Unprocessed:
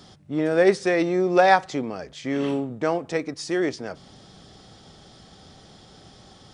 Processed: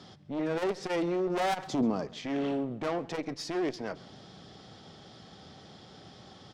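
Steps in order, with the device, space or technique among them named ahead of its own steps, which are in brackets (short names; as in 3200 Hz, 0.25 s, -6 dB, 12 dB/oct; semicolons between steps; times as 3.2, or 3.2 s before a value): valve radio (BPF 90–5200 Hz; tube stage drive 25 dB, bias 0.4; core saturation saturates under 300 Hz); 1.67–2.07 ten-band EQ 125 Hz +6 dB, 250 Hz +8 dB, 1000 Hz +5 dB, 2000 Hz -8 dB, 8000 Hz +5 dB; feedback echo 0.134 s, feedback 46%, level -22 dB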